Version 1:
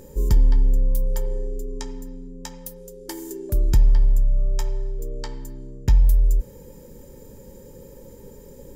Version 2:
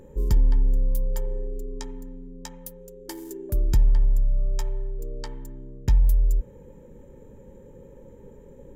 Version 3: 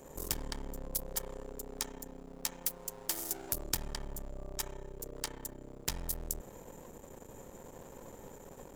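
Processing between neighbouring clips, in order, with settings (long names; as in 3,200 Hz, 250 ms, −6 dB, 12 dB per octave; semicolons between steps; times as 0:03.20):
adaptive Wiener filter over 9 samples; level −3 dB
gain on one half-wave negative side −12 dB; bass and treble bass −5 dB, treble +12 dB; every bin compressed towards the loudest bin 2 to 1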